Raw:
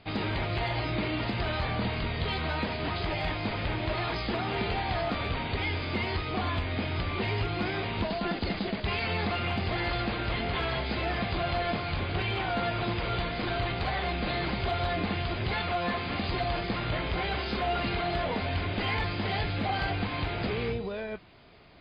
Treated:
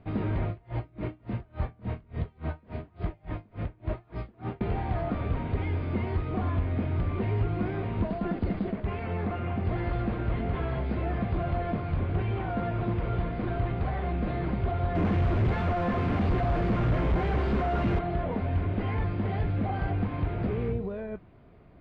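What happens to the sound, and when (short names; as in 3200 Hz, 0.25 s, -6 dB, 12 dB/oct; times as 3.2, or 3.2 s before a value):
0.48–4.61 dB-linear tremolo 3.5 Hz, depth 32 dB
8.72–9.65 tone controls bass -3 dB, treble -9 dB
14.95–17.99 companded quantiser 2-bit
whole clip: LPF 1700 Hz 12 dB/oct; low shelf 470 Hz +10.5 dB; notch 840 Hz, Q 19; gain -5.5 dB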